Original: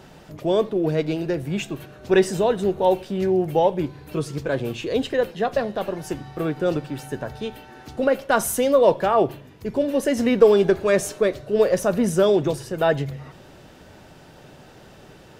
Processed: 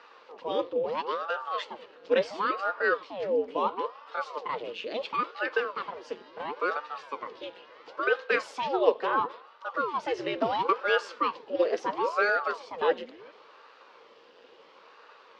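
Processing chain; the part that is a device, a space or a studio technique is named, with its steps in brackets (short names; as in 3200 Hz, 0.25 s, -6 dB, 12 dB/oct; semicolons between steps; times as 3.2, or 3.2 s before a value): voice changer toy (ring modulator with a swept carrier 570 Hz, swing 85%, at 0.73 Hz; speaker cabinet 460–4900 Hz, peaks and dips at 480 Hz +10 dB, 710 Hz -8 dB, 1100 Hz +4 dB, 2900 Hz +5 dB, 4700 Hz +3 dB); gain -5 dB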